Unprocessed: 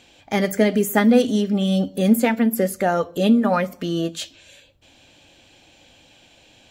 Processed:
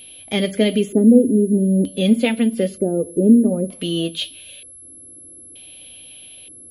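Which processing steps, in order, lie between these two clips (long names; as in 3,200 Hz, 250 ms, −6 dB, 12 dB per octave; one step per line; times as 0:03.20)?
auto-filter low-pass square 0.54 Hz 370–3,300 Hz
steady tone 11,000 Hz −40 dBFS
flat-topped bell 1,200 Hz −9.5 dB
level +1 dB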